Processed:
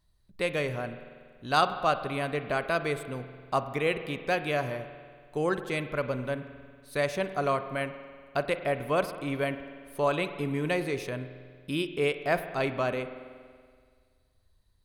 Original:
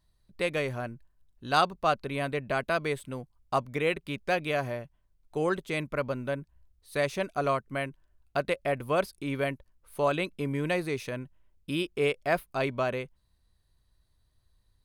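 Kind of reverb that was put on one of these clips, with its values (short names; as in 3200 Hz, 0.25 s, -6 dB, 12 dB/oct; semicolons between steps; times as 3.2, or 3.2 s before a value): spring tank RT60 1.9 s, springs 47 ms, chirp 20 ms, DRR 10 dB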